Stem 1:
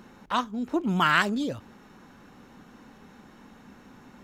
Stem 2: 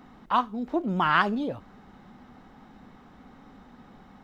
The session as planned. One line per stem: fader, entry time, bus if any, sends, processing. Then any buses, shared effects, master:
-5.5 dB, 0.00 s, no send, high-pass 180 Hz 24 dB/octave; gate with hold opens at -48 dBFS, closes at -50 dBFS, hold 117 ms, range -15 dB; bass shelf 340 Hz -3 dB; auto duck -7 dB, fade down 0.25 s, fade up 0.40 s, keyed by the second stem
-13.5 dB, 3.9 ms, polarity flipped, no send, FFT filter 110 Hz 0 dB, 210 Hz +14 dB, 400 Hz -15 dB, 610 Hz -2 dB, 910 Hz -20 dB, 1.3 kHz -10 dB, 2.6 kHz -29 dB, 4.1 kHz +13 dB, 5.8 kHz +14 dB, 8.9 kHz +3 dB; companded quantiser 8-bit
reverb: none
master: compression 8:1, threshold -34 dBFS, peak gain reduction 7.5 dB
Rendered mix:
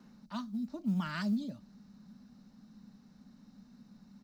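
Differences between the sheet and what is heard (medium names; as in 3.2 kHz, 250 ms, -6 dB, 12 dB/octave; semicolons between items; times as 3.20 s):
stem 1 -5.5 dB -> -12.5 dB; master: missing compression 8:1, threshold -34 dBFS, peak gain reduction 7.5 dB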